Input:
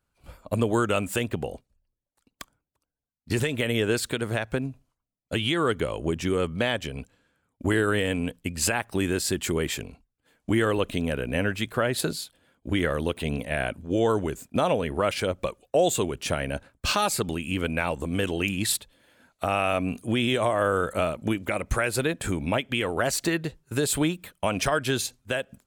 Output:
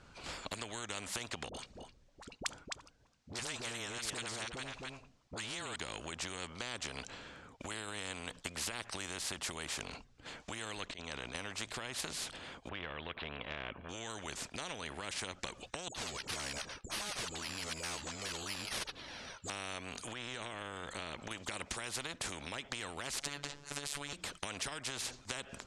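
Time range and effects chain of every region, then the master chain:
0:01.49–0:05.76: all-pass dispersion highs, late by 53 ms, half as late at 690 Hz + single-tap delay 260 ms −16.5 dB
0:10.86–0:11.35: Butterworth low-pass 8,500 Hz 48 dB per octave + volume swells 221 ms + output level in coarse steps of 13 dB
0:12.69–0:13.89: Butterworth low-pass 2,900 Hz + comb filter 1.8 ms, depth 39%
0:15.88–0:19.50: all-pass dispersion highs, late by 68 ms, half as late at 540 Hz + bad sample-rate conversion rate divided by 6×, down none, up hold + flanger whose copies keep moving one way falling 1.9 Hz
0:20.13–0:21.31: low-pass filter 2,600 Hz 6 dB per octave + downward compressor 1.5 to 1, threshold −33 dBFS
0:23.21–0:24.13: transient designer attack +2 dB, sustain +7 dB + phases set to zero 143 Hz
whole clip: low-pass filter 6,800 Hz 24 dB per octave; downward compressor, threshold −35 dBFS; every bin compressed towards the loudest bin 4 to 1; level +4 dB

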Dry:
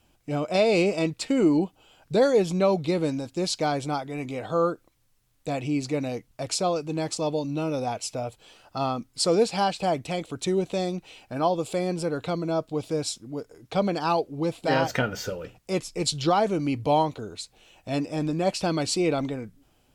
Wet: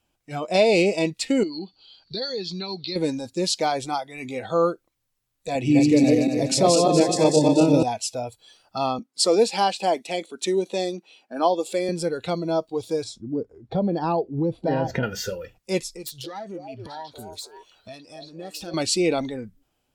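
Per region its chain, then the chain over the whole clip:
0:01.43–0:02.96: low-pass with resonance 4,400 Hz, resonance Q 11 + parametric band 630 Hz −4.5 dB 0.73 octaves + downward compressor 3 to 1, threshold −33 dBFS
0:05.55–0:07.83: feedback delay that plays each chunk backwards 121 ms, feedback 66%, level −1.5 dB + high-pass filter 150 Hz + low-shelf EQ 310 Hz +11 dB
0:08.99–0:11.89: high-pass filter 210 Hz 24 dB per octave + one half of a high-frequency compander decoder only
0:13.04–0:15.03: high-pass filter 180 Hz 6 dB per octave + spectral tilt −4.5 dB per octave + downward compressor 4 to 1, threshold −22 dBFS
0:15.91–0:18.74: phase distortion by the signal itself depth 0.092 ms + downward compressor 5 to 1, threshold −35 dBFS + echo through a band-pass that steps 280 ms, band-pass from 530 Hz, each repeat 1.4 octaves, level −1 dB
whole clip: dynamic equaliser 1,400 Hz, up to −4 dB, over −42 dBFS, Q 2.7; noise reduction from a noise print of the clip's start 12 dB; low-shelf EQ 270 Hz −4.5 dB; level +4.5 dB

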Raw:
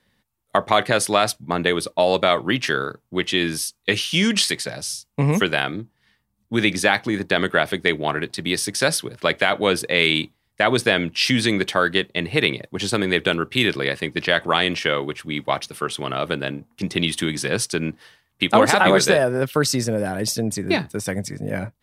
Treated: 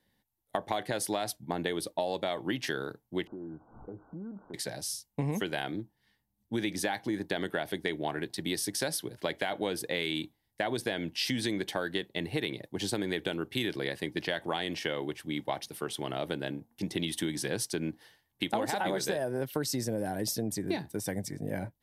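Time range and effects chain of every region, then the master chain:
0:03.27–0:04.54: converter with a step at zero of −31 dBFS + Chebyshev low-pass filter 1,500 Hz, order 10 + downward compressor 3 to 1, threshold −36 dBFS
whole clip: thirty-one-band graphic EQ 315 Hz +5 dB, 800 Hz +5 dB, 1,250 Hz −10 dB, 2,500 Hz −5 dB, 12,500 Hz +9 dB; downward compressor, threshold −19 dBFS; level −8.5 dB

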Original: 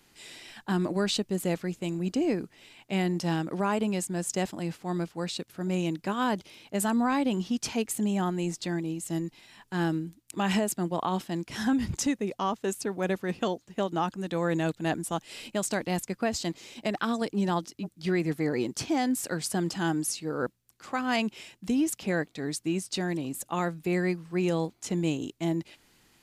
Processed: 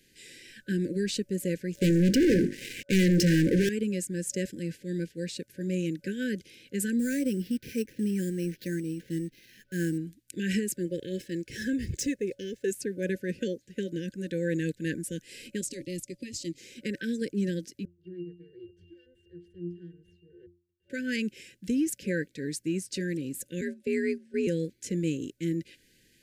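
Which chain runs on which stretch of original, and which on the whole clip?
0:01.75–0:03.69: low-pass filter 7,700 Hz + mains-hum notches 50/100/150/200/250/300/350 Hz + leveller curve on the samples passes 5
0:06.99–0:09.98: de-essing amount 90% + high-shelf EQ 7,600 Hz −12 dB + sample-rate reduction 8,300 Hz
0:10.76–0:12.71: running median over 3 samples + comb filter 2.3 ms, depth 44%
0:15.61–0:16.58: low-pass filter 11,000 Hz + phaser with its sweep stopped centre 310 Hz, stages 8
0:17.85–0:20.90: lower of the sound and its delayed copy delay 2.2 ms + resonances in every octave F, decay 0.38 s
0:23.61–0:24.47: frequency shifter +61 Hz + low-pass filter 11,000 Hz 24 dB per octave + noise gate −37 dBFS, range −9 dB
whole clip: brick-wall band-stop 570–1,500 Hz; dynamic equaliser 3,500 Hz, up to −6 dB, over −53 dBFS, Q 1.8; level −1 dB

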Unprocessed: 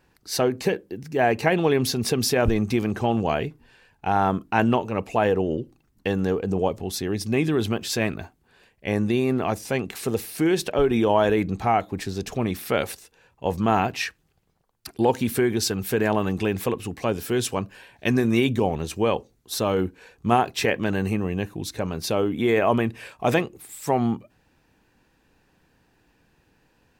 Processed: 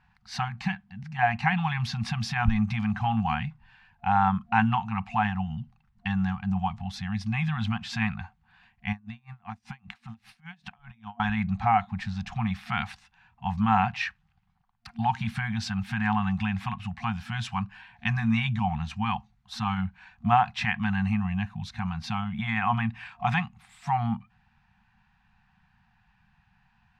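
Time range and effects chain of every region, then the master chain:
0:08.92–0:11.20: downward compressor 4 to 1, threshold −28 dBFS + tremolo with a sine in dB 5.1 Hz, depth 29 dB
whole clip: low-pass filter 2,900 Hz 12 dB per octave; brick-wall band-stop 230–700 Hz

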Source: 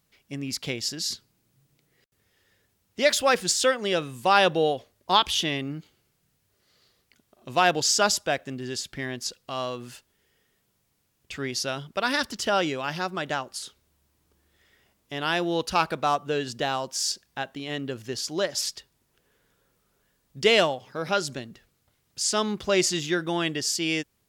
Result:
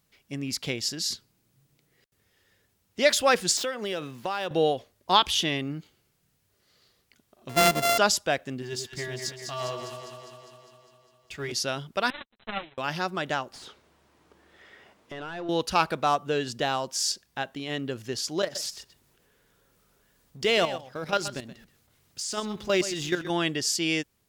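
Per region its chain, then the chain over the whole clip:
0:03.57–0:04.51: running median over 5 samples + high-pass filter 150 Hz + downward compressor 5 to 1, threshold −27 dBFS
0:07.49–0:07.98: samples sorted by size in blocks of 64 samples + notch filter 1,500 Hz, Q 17
0:08.62–0:11.52: mu-law and A-law mismatch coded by A + notch comb filter 260 Hz + delay that swaps between a low-pass and a high-pass 101 ms, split 830 Hz, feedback 80%, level −4.5 dB
0:12.10–0:12.78: lower of the sound and its delayed copy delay 8.9 ms + power curve on the samples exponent 3 + linear-phase brick-wall low-pass 4,100 Hz
0:13.53–0:15.49: parametric band 13,000 Hz −9 dB 0.23 octaves + downward compressor 5 to 1, threshold −42 dBFS + mid-hump overdrive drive 24 dB, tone 1,000 Hz, clips at −23 dBFS
0:18.42–0:23.30: mu-law and A-law mismatch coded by mu + output level in coarse steps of 11 dB + single-tap delay 126 ms −13 dB
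whole clip: no processing

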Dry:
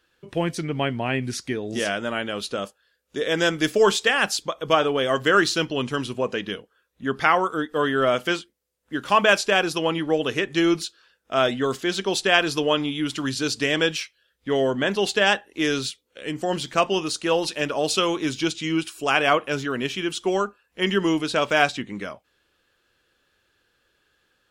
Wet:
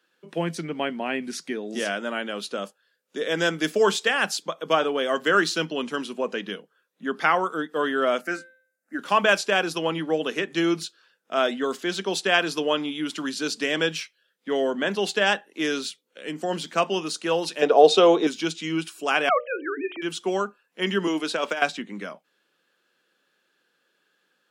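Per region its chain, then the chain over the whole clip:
0:08.21–0:08.99: phaser with its sweep stopped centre 660 Hz, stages 8 + hum removal 259.4 Hz, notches 15
0:17.62–0:18.27: low-pass filter 7,100 Hz + hollow resonant body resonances 470/700/3,700 Hz, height 16 dB, ringing for 25 ms
0:19.29–0:20.02: three sine waves on the formant tracks + mains-hum notches 60/120/180/240/300/360/420/480/540/600 Hz
0:21.07–0:21.62: high-pass filter 260 Hz + compressor whose output falls as the input rises −22 dBFS, ratio −0.5
whole clip: Chebyshev high-pass filter 160 Hz, order 6; parametric band 1,500 Hz +2 dB 0.22 octaves; level −2 dB

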